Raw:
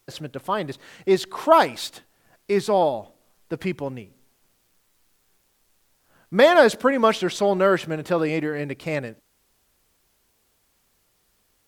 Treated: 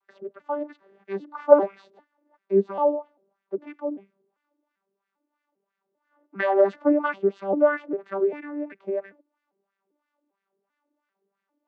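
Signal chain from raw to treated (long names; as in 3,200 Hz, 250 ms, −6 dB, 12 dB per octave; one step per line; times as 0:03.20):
vocoder with an arpeggio as carrier bare fifth, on G3, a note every 396 ms
auto-filter band-pass sine 3 Hz 380–1,800 Hz
level +4.5 dB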